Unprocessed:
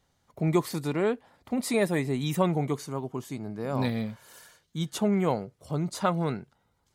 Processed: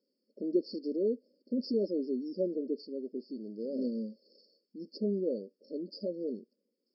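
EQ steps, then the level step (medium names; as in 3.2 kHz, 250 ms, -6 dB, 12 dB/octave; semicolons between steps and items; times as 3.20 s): brick-wall FIR band-pass 200–5500 Hz; brick-wall FIR band-stop 620–4300 Hz; band-stop 600 Hz, Q 12; -3.0 dB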